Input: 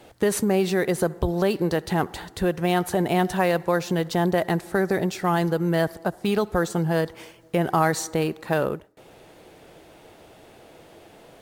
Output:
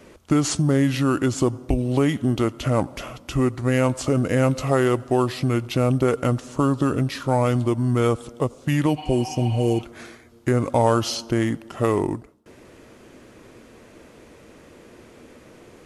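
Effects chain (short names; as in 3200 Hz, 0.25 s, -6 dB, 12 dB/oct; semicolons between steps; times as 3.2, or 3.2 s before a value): spectral repair 6.48–7.04, 980–6700 Hz before; varispeed -28%; gain +2 dB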